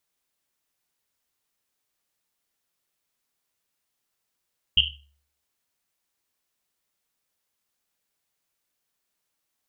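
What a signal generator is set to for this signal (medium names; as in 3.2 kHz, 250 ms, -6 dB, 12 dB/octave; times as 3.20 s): Risset drum, pitch 71 Hz, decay 0.60 s, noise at 3 kHz, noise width 400 Hz, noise 80%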